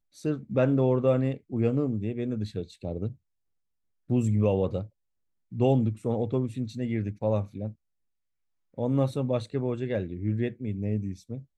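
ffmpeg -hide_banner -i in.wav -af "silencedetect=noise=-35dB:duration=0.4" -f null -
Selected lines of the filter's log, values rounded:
silence_start: 3.11
silence_end: 4.10 | silence_duration: 0.99
silence_start: 4.84
silence_end: 5.53 | silence_duration: 0.69
silence_start: 7.71
silence_end: 8.78 | silence_duration: 1.07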